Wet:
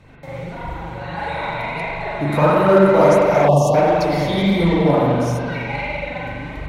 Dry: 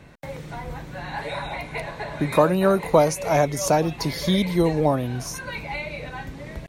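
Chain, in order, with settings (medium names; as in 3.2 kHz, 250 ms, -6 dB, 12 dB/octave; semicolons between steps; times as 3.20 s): treble shelf 7.6 kHz -5 dB; band-stop 1.7 kHz, Q 13; spring tank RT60 2.2 s, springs 41 ms, chirp 65 ms, DRR -8 dB; dynamic bell 1.5 kHz, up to +3 dB, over -27 dBFS, Q 1.3; flange 1.5 Hz, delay 0.7 ms, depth 8.9 ms, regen +29%; in parallel at -6 dB: one-sided clip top -21 dBFS, bottom -12.5 dBFS; on the sum: spectral selection erased 3.48–3.75 s, 1.2–2.6 kHz; trim -2 dB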